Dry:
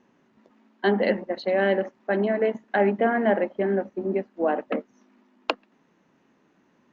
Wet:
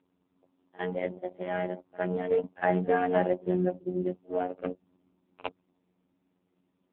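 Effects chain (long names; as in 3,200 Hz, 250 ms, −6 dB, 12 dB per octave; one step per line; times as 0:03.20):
adaptive Wiener filter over 25 samples
source passing by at 0:03.08, 17 m/s, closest 17 metres
in parallel at −2 dB: downward compressor 16 to 1, threshold −36 dBFS, peak gain reduction 20.5 dB
on the sum: phases set to zero 90.6 Hz
echo ahead of the sound 56 ms −21 dB
AMR narrowband 6.7 kbit/s 8,000 Hz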